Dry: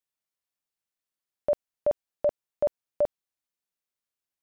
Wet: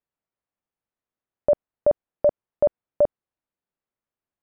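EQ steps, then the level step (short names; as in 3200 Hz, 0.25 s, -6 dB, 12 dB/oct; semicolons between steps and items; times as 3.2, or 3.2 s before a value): LPF 1100 Hz 6 dB/oct; air absorption 250 m; +8.0 dB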